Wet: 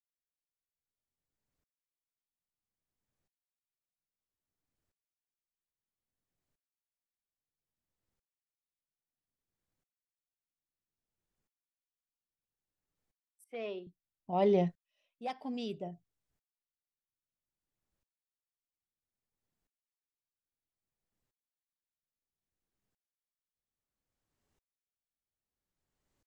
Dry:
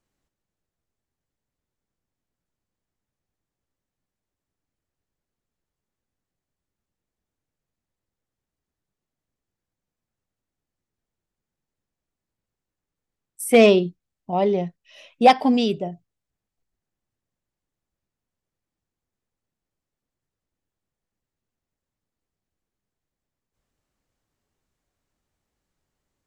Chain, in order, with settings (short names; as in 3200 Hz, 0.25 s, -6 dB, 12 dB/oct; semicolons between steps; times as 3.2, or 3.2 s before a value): 13.44–13.87 three-band isolator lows -14 dB, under 270 Hz, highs -24 dB, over 4400 Hz; dB-ramp tremolo swelling 0.61 Hz, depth 38 dB